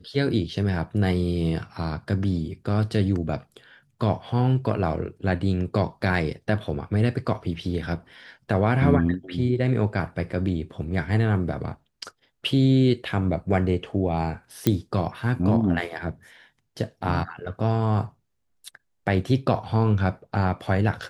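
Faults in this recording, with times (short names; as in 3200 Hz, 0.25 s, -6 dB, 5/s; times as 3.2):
14.67 pop -6 dBFS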